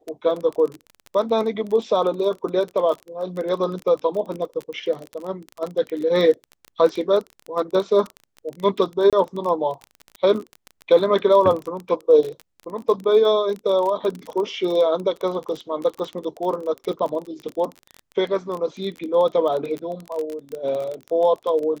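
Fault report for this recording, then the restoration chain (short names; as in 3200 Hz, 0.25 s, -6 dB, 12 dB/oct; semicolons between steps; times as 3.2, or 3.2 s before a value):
crackle 26/s -26 dBFS
9.1–9.13 gap 27 ms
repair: de-click; interpolate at 9.1, 27 ms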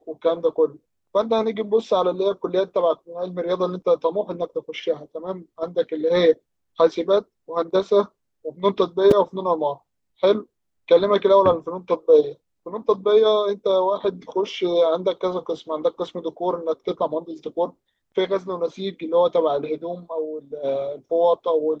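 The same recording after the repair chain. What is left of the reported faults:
none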